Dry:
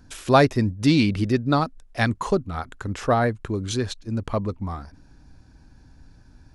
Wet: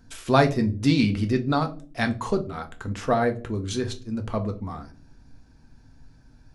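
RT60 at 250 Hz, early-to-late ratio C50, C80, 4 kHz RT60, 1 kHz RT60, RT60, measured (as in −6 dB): 0.75 s, 16.0 dB, 21.5 dB, 0.25 s, 0.35 s, 0.40 s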